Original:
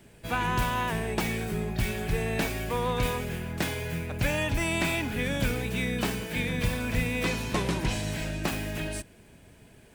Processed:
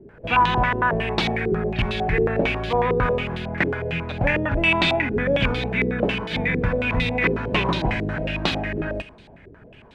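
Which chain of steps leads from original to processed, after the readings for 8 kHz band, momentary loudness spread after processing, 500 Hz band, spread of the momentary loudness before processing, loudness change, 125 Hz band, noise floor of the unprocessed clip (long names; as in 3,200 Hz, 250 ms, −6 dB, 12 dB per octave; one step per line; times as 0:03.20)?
below −10 dB, 7 LU, +9.0 dB, 5 LU, +7.5 dB, +4.5 dB, −55 dBFS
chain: four-comb reverb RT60 0.68 s, combs from 31 ms, DRR 14 dB
low-pass on a step sequencer 11 Hz 400–3,800 Hz
level +4.5 dB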